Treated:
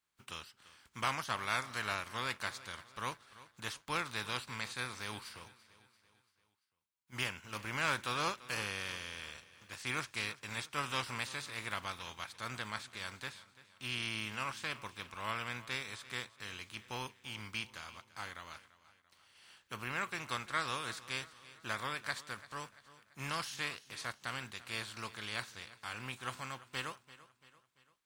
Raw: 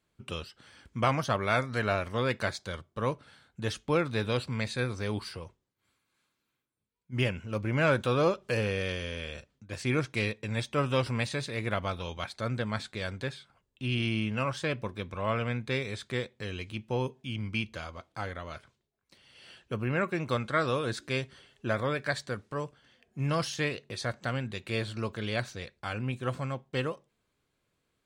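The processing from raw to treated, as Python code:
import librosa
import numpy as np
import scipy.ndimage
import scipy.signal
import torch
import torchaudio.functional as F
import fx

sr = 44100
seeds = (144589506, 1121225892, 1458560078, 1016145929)

y = fx.spec_flatten(x, sr, power=0.62)
y = fx.low_shelf_res(y, sr, hz=760.0, db=-6.5, q=1.5)
y = fx.echo_feedback(y, sr, ms=340, feedback_pct=49, wet_db=-18.0)
y = F.gain(torch.from_numpy(y), -7.5).numpy()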